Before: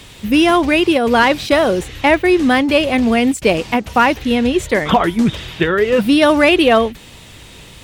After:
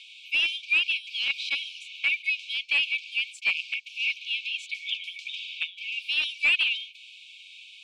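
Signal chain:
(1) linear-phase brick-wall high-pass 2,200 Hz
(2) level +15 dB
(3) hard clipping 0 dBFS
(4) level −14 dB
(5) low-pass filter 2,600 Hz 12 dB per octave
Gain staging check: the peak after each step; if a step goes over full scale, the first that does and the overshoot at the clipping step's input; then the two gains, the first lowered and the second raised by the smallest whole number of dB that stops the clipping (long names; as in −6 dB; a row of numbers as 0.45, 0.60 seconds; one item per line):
−6.5, +8.5, 0.0, −14.0, −14.5 dBFS
step 2, 8.5 dB
step 2 +6 dB, step 4 −5 dB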